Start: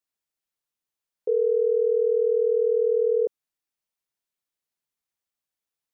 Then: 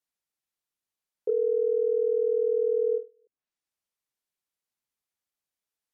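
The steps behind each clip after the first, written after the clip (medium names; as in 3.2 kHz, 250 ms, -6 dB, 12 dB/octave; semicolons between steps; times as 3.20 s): low-pass that closes with the level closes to 550 Hz, closed at -21.5 dBFS; endings held to a fixed fall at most 240 dB/s; trim -1.5 dB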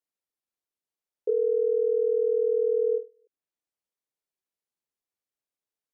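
peaking EQ 420 Hz +7.5 dB 1.8 oct; trim -6.5 dB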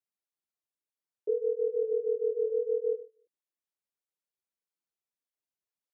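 cancelling through-zero flanger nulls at 1.6 Hz, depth 4.3 ms; trim -2.5 dB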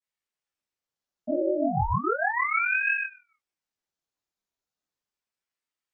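reverberation, pre-delay 3 ms, DRR -14 dB; ring modulator with a swept carrier 1.1 kHz, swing 90%, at 0.34 Hz; trim -9 dB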